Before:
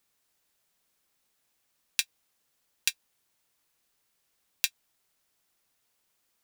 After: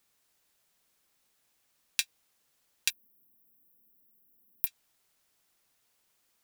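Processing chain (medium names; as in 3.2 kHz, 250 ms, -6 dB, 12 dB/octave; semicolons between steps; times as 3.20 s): 2.90–4.67 s: FFT filter 120 Hz 0 dB, 220 Hz +11 dB, 1 kHz -12 dB, 6.5 kHz -29 dB, 13 kHz +10 dB; in parallel at +1.5 dB: peak limiter -10 dBFS, peak gain reduction 11 dB; on the sum: trim -5 dB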